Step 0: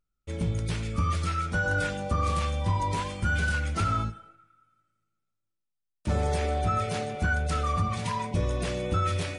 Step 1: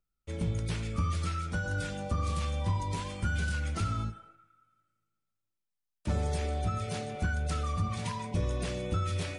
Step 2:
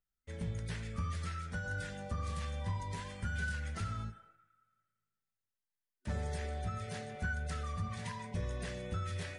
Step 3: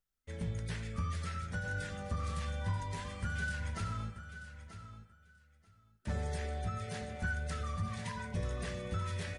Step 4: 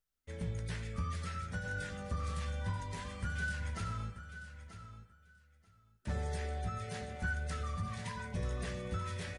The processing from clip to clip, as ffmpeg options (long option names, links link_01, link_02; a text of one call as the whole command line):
ffmpeg -i in.wav -filter_complex "[0:a]acrossover=split=330|3000[link_01][link_02][link_03];[link_02]acompressor=threshold=-34dB:ratio=6[link_04];[link_01][link_04][link_03]amix=inputs=3:normalize=0,volume=-3dB" out.wav
ffmpeg -i in.wav -af "superequalizer=6b=0.501:11b=2.24,volume=-7dB" out.wav
ffmpeg -i in.wav -af "aecho=1:1:935|1870:0.251|0.0402,volume=1dB" out.wav
ffmpeg -i in.wav -filter_complex "[0:a]asplit=2[link_01][link_02];[link_02]adelay=16,volume=-12.5dB[link_03];[link_01][link_03]amix=inputs=2:normalize=0,volume=-1dB" out.wav